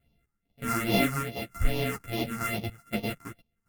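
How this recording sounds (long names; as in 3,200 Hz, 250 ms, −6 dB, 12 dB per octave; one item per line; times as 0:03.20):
a buzz of ramps at a fixed pitch in blocks of 64 samples
phaser sweep stages 4, 2.4 Hz, lowest notch 580–1,400 Hz
sample-and-hold tremolo 4.1 Hz, depth 85%
a shimmering, thickened sound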